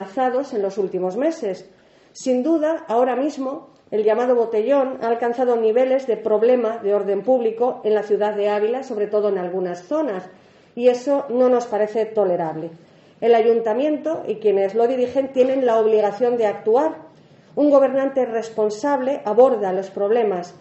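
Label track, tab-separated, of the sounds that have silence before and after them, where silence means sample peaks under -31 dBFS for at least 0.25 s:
2.170000	3.590000	sound
3.920000	10.260000	sound
10.770000	12.710000	sound
13.220000	17.000000	sound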